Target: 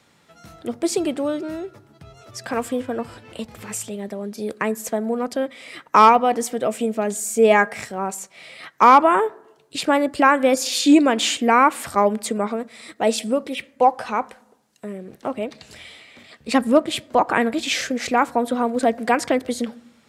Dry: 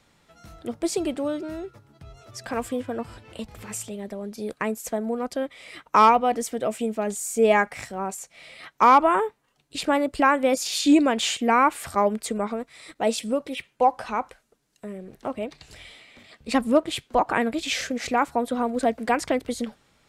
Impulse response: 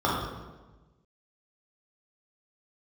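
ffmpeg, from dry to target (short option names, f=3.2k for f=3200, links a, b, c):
-filter_complex "[0:a]highpass=100,asplit=2[a][b];[1:a]atrim=start_sample=2205,asetrate=61740,aresample=44100[c];[b][c]afir=irnorm=-1:irlink=0,volume=-35.5dB[d];[a][d]amix=inputs=2:normalize=0,volume=4dB"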